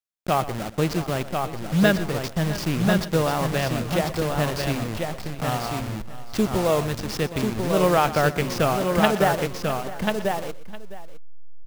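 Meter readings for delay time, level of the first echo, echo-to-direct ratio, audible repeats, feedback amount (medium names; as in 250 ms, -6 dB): 122 ms, -16.0 dB, -4.0 dB, 5, no regular repeats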